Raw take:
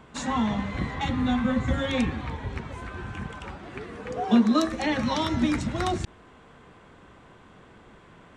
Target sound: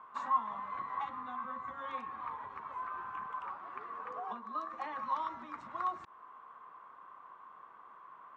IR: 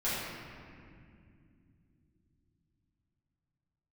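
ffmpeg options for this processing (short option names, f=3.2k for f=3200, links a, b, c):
-af "acompressor=threshold=-30dB:ratio=5,bandpass=f=1.1k:t=q:w=8.9:csg=0,volume=9.5dB"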